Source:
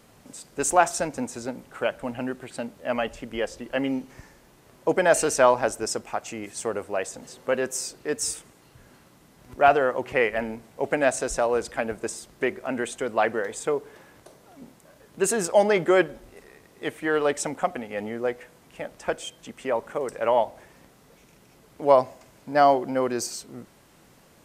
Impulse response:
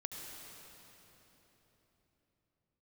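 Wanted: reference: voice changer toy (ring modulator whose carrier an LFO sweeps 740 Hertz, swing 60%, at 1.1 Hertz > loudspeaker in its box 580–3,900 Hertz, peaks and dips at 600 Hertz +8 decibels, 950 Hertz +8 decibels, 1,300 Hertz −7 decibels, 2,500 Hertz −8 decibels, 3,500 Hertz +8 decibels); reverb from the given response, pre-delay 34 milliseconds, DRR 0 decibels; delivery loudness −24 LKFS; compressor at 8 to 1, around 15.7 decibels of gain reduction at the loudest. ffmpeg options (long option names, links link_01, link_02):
-filter_complex "[0:a]acompressor=threshold=-29dB:ratio=8,asplit=2[link_01][link_02];[1:a]atrim=start_sample=2205,adelay=34[link_03];[link_02][link_03]afir=irnorm=-1:irlink=0,volume=1dB[link_04];[link_01][link_04]amix=inputs=2:normalize=0,aeval=exprs='val(0)*sin(2*PI*740*n/s+740*0.6/1.1*sin(2*PI*1.1*n/s))':channel_layout=same,highpass=580,equalizer=frequency=600:width_type=q:width=4:gain=8,equalizer=frequency=950:width_type=q:width=4:gain=8,equalizer=frequency=1300:width_type=q:width=4:gain=-7,equalizer=frequency=2500:width_type=q:width=4:gain=-8,equalizer=frequency=3500:width_type=q:width=4:gain=8,lowpass=frequency=3900:width=0.5412,lowpass=frequency=3900:width=1.3066,volume=11dB"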